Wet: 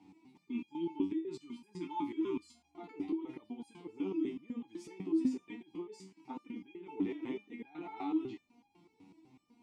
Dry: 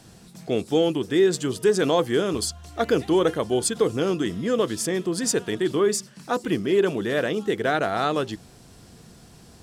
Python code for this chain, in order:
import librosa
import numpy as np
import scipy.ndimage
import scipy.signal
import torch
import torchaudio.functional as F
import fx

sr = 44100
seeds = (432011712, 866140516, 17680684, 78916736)

y = fx.spec_erase(x, sr, start_s=0.45, length_s=2.1, low_hz=420.0, high_hz=840.0)
y = fx.over_compress(y, sr, threshold_db=-26.0, ratio=-1.0)
y = fx.vowel_filter(y, sr, vowel='u')
y = fx.resonator_held(y, sr, hz=8.0, low_hz=95.0, high_hz=810.0)
y = y * 10.0 ** (10.0 / 20.0)